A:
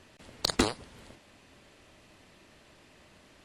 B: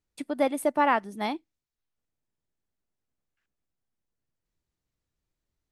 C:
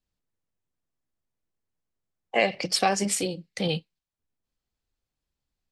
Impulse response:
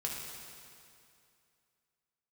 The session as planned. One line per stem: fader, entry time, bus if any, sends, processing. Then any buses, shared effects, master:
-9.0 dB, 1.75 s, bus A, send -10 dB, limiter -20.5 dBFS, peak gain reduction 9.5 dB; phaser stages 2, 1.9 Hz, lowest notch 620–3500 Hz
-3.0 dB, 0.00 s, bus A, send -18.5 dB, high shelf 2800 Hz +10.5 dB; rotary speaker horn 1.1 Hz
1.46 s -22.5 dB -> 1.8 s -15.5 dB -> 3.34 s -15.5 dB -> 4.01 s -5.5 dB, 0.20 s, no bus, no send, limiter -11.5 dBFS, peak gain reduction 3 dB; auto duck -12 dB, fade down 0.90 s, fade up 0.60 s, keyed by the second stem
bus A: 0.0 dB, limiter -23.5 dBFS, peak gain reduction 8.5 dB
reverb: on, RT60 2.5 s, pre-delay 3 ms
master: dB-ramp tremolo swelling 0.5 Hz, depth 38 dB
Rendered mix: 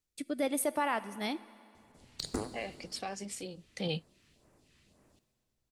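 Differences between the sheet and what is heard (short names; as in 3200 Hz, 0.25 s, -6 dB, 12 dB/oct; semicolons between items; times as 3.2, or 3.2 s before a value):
stem A: missing limiter -20.5 dBFS, peak gain reduction 9.5 dB; master: missing dB-ramp tremolo swelling 0.5 Hz, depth 38 dB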